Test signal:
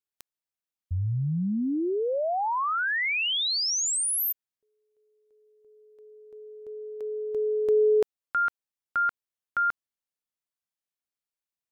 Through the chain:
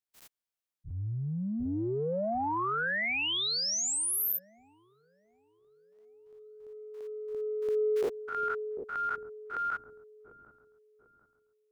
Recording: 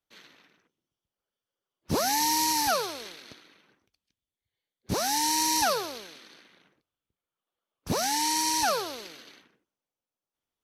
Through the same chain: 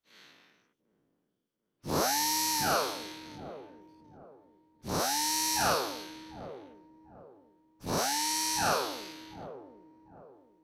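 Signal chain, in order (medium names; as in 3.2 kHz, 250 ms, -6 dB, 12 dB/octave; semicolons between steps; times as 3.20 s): every event in the spectrogram widened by 120 ms; feedback echo behind a low-pass 746 ms, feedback 35%, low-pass 420 Hz, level -5.5 dB; transient shaper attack -8 dB, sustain +2 dB; trim -7.5 dB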